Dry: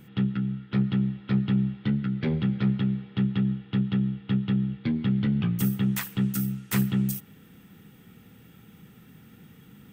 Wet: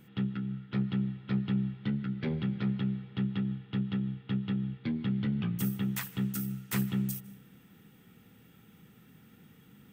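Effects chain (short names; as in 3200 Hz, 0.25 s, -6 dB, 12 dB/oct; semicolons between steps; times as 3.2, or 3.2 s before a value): low shelf 150 Hz -3.5 dB; on a send: reverb RT60 0.65 s, pre-delay 0.153 s, DRR 20.5 dB; on the sum: gain -5 dB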